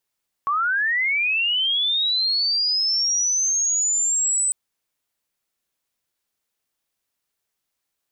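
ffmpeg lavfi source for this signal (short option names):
-f lavfi -i "aevalsrc='pow(10,(-18.5+0.5*t/4.05)/20)*sin(2*PI*(1100*t+7000*t*t/(2*4.05)))':d=4.05:s=44100"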